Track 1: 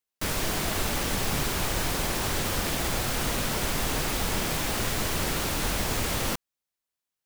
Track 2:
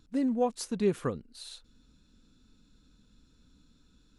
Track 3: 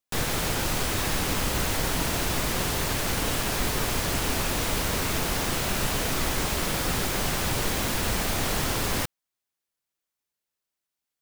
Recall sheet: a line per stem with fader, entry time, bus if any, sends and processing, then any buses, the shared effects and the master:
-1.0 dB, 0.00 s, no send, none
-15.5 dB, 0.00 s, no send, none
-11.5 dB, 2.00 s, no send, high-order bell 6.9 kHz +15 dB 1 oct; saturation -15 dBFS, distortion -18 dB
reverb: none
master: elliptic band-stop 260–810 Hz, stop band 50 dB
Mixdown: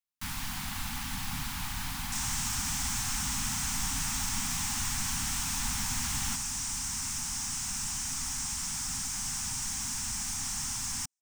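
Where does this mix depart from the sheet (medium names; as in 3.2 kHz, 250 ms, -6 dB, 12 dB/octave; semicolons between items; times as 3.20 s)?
stem 1 -1.0 dB -> -7.0 dB; stem 2: muted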